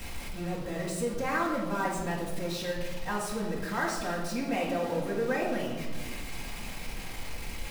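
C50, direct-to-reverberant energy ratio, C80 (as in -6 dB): 3.5 dB, -6.0 dB, 6.5 dB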